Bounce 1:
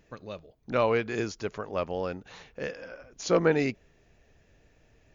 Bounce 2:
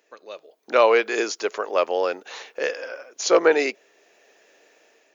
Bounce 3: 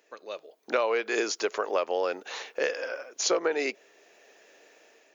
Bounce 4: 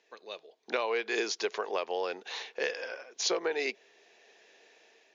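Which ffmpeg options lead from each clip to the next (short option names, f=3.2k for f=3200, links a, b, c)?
-af "highshelf=f=5.1k:g=5,dynaudnorm=f=190:g=5:m=10dB,highpass=f=370:w=0.5412,highpass=f=370:w=1.3066"
-af "acompressor=threshold=-23dB:ratio=6"
-af "highpass=140,equalizer=f=290:t=q:w=4:g=-7,equalizer=f=570:t=q:w=4:g=-7,equalizer=f=1.3k:t=q:w=4:g=-7,equalizer=f=3.7k:t=q:w=4:g=4,lowpass=f=6.2k:w=0.5412,lowpass=f=6.2k:w=1.3066,volume=-1.5dB"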